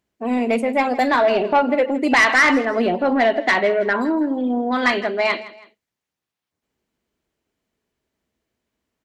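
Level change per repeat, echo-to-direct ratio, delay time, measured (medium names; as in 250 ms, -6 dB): -8.5 dB, -17.0 dB, 162 ms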